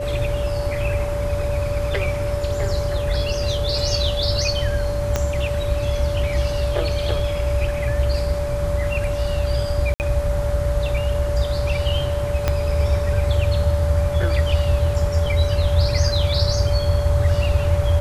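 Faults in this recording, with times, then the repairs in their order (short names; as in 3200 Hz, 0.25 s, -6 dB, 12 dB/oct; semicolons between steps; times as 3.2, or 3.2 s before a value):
tone 580 Hz -24 dBFS
5.16 pop -6 dBFS
9.94–10 gap 59 ms
12.48 pop -6 dBFS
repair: de-click; notch 580 Hz, Q 30; interpolate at 9.94, 59 ms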